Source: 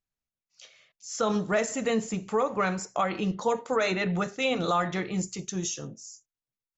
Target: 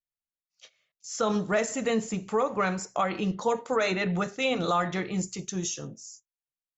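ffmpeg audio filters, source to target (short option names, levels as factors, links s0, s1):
-af "agate=range=0.224:threshold=0.00316:ratio=16:detection=peak"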